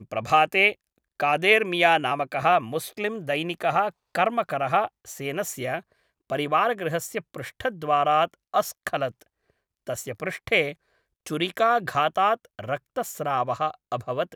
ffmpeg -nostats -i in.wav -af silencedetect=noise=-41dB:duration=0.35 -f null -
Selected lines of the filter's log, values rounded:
silence_start: 0.73
silence_end: 1.20 | silence_duration: 0.47
silence_start: 5.80
silence_end: 6.30 | silence_duration: 0.50
silence_start: 9.22
silence_end: 9.87 | silence_duration: 0.65
silence_start: 10.73
silence_end: 11.26 | silence_duration: 0.53